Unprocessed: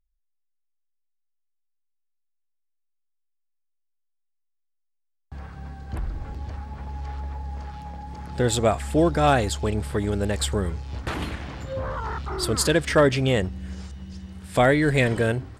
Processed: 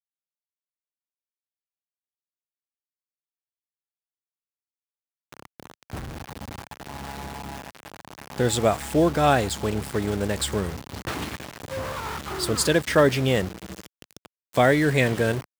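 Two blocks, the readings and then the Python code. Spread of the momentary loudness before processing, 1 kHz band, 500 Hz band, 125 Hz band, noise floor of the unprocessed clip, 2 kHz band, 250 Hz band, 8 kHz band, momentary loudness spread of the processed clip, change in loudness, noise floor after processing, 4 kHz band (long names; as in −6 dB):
18 LU, 0.0 dB, 0.0 dB, −2.0 dB, −74 dBFS, 0.0 dB, 0.0 dB, +0.5 dB, 19 LU, +0.5 dB, below −85 dBFS, +0.5 dB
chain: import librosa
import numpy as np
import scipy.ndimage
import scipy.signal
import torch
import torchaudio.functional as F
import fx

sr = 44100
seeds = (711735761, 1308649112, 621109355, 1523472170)

y = np.where(np.abs(x) >= 10.0 ** (-30.0 / 20.0), x, 0.0)
y = scipy.signal.sosfilt(scipy.signal.butter(2, 95.0, 'highpass', fs=sr, output='sos'), y)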